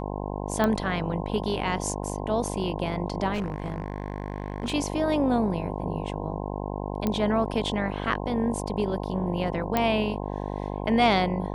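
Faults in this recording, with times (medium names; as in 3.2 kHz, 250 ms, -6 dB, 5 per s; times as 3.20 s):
buzz 50 Hz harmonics 21 -32 dBFS
0.64 s: pop -12 dBFS
3.33–4.74 s: clipped -24.5 dBFS
7.07 s: pop -13 dBFS
9.77 s: pop -10 dBFS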